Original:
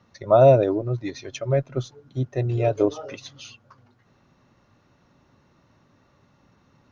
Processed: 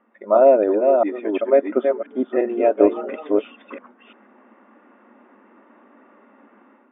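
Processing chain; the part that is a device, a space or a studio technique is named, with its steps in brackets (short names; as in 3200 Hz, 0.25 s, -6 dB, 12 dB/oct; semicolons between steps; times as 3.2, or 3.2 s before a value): reverse delay 0.344 s, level -6 dB; FFT band-pass 200–3700 Hz; 0.95–1.82 dynamic EQ 1700 Hz, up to -4 dB, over -42 dBFS, Q 2; action camera in a waterproof case (LPF 2200 Hz 24 dB/oct; AGC gain up to 10.5 dB; AAC 96 kbps 48000 Hz)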